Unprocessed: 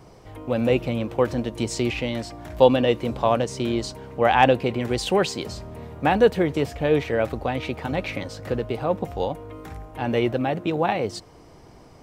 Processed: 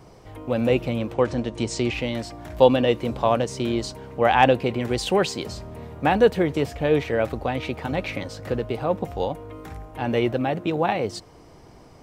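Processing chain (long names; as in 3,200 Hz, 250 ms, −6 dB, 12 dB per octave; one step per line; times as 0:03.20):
0:01.13–0:01.93: low-pass filter 8,600 Hz 24 dB per octave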